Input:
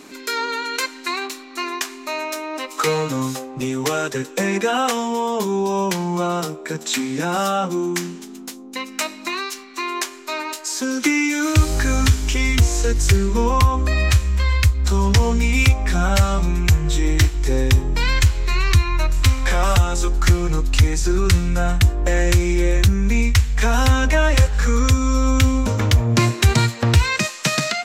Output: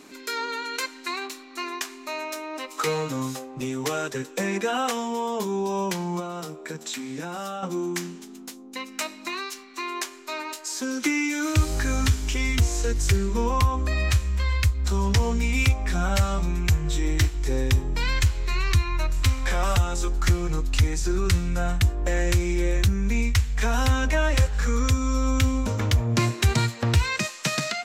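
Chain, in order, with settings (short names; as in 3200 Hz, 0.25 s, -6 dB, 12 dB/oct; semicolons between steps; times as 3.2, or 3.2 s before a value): 6.19–7.63 compressor, threshold -24 dBFS, peak gain reduction 7.5 dB; gain -6 dB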